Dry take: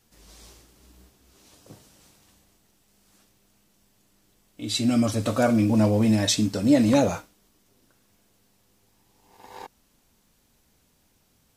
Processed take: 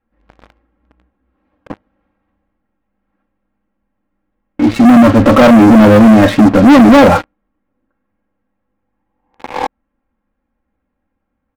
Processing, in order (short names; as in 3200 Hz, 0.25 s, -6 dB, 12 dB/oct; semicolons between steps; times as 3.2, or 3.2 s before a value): LPF 1900 Hz 24 dB/oct; comb 3.7 ms, depth 76%; sample leveller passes 5; gain +4 dB